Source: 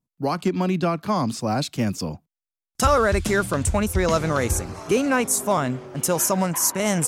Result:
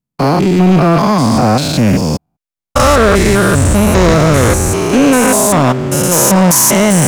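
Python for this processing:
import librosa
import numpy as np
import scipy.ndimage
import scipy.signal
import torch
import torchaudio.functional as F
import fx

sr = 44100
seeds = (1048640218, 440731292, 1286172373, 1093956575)

y = fx.spec_steps(x, sr, hold_ms=200)
y = fx.leveller(y, sr, passes=3)
y = F.gain(torch.from_numpy(y), 7.5).numpy()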